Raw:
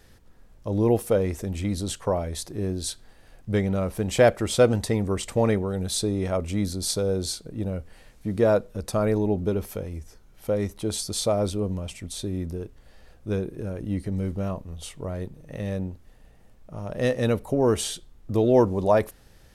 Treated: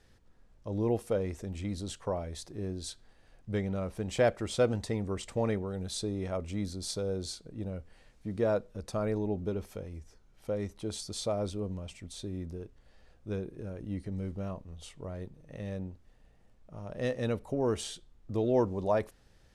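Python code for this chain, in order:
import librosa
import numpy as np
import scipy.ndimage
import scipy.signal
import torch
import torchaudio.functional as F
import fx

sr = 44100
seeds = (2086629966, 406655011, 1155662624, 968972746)

y = scipy.signal.sosfilt(scipy.signal.butter(2, 8300.0, 'lowpass', fs=sr, output='sos'), x)
y = y * 10.0 ** (-8.5 / 20.0)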